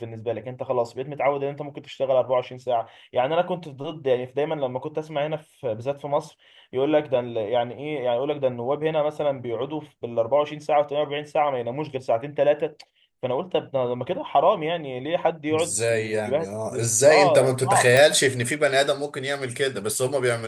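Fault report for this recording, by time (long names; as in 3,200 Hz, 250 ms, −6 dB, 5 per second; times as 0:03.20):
0:17.97: click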